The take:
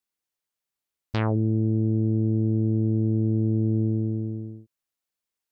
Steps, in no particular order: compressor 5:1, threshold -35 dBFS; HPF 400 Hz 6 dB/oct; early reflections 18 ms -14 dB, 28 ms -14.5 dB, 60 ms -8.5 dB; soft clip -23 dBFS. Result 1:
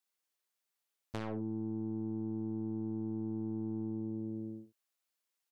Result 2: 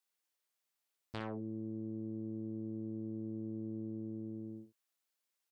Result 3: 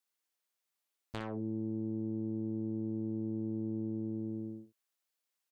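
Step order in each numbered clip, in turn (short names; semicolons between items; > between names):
HPF > soft clip > early reflections > compressor; compressor > HPF > soft clip > early reflections; HPF > compressor > soft clip > early reflections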